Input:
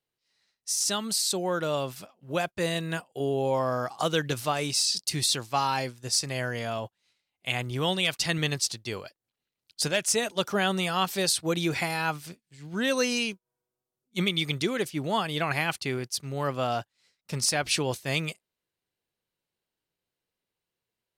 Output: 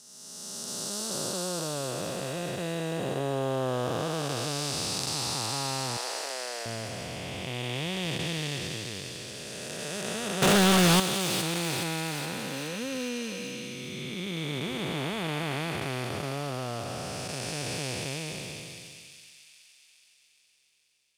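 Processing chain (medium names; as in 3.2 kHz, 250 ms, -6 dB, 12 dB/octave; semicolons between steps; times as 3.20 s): spectral blur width 995 ms; 5.97–6.66 s: high-pass 410 Hz 24 dB/octave; 10.42–11.00 s: waveshaping leveller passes 5; feedback echo behind a high-pass 419 ms, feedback 57%, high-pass 3.2 kHz, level -5 dB; trim +2.5 dB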